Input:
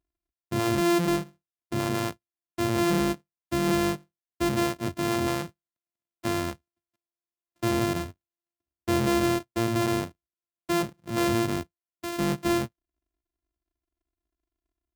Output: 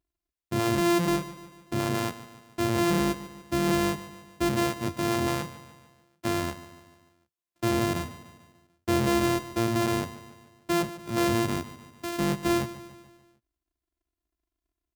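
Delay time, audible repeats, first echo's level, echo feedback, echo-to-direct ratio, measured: 147 ms, 4, -15.0 dB, 52%, -13.5 dB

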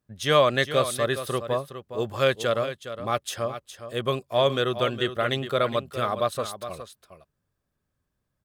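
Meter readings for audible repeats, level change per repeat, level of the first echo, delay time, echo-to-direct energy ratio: 1, no regular repeats, -11.0 dB, 413 ms, -11.0 dB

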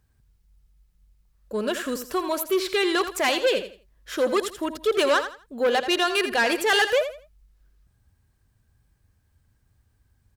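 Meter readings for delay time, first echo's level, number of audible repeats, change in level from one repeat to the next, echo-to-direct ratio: 83 ms, -10.5 dB, 3, -11.5 dB, -10.0 dB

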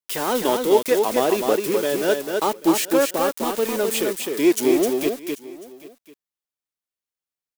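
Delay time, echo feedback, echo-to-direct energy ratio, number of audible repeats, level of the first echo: 257 ms, no regular repeats, -4.5 dB, 3, -4.5 dB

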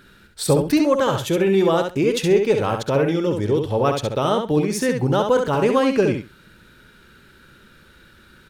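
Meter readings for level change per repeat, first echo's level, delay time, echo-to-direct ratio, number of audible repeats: -16.0 dB, -5.5 dB, 67 ms, -5.5 dB, 2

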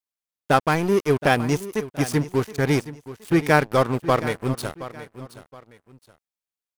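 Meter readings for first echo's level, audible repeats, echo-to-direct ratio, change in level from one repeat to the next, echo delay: -15.0 dB, 2, -14.5 dB, -10.0 dB, 721 ms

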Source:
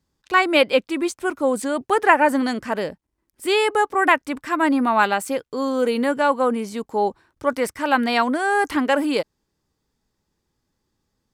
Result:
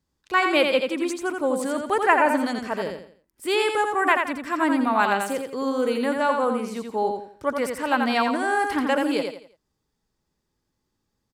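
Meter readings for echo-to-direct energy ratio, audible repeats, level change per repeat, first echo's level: -4.5 dB, 4, -9.5 dB, -5.0 dB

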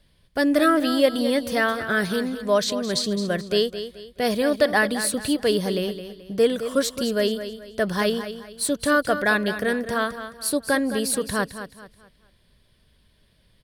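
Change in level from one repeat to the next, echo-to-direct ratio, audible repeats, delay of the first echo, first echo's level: -9.5 dB, -10.5 dB, 3, 215 ms, -11.0 dB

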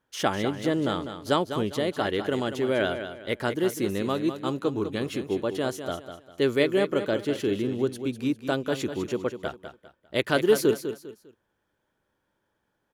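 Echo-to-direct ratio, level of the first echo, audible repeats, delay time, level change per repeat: -9.0 dB, -9.5 dB, 3, 200 ms, -10.0 dB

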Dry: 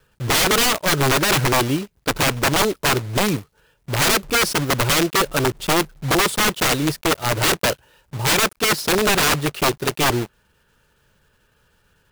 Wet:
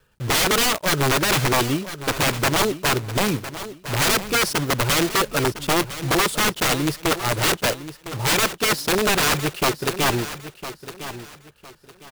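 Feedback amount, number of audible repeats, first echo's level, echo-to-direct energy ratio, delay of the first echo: 28%, 2, -13.0 dB, -12.5 dB, 1007 ms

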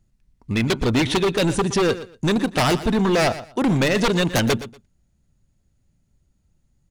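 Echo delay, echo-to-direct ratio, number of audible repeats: 119 ms, -14.5 dB, 2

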